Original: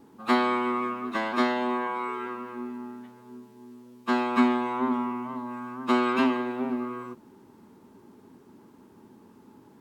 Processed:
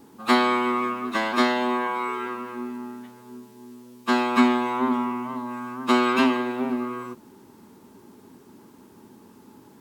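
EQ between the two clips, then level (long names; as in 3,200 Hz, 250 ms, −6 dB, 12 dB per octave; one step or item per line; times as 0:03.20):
high-shelf EQ 3,300 Hz +8 dB
+3.0 dB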